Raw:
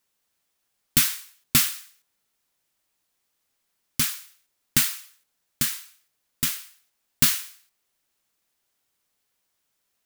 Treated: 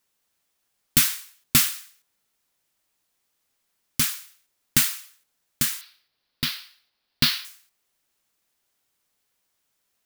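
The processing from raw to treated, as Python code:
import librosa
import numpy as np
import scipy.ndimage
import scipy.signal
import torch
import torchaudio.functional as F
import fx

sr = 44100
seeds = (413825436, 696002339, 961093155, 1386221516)

y = fx.high_shelf_res(x, sr, hz=5600.0, db=-8.5, q=3.0, at=(5.81, 7.45))
y = F.gain(torch.from_numpy(y), 1.0).numpy()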